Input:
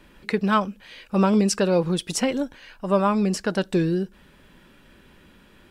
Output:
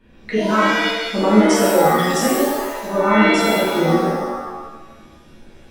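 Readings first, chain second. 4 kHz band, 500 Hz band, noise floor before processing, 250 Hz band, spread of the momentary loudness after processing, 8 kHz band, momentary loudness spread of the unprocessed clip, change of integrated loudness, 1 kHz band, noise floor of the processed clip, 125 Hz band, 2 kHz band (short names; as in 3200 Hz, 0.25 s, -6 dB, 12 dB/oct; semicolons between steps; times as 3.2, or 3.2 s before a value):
+9.0 dB, +7.0 dB, -54 dBFS, +5.0 dB, 11 LU, +5.5 dB, 13 LU, +6.5 dB, +9.0 dB, -46 dBFS, +1.5 dB, +12.5 dB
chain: formant sharpening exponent 1.5; shimmer reverb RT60 1 s, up +7 st, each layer -2 dB, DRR -8 dB; gain -5 dB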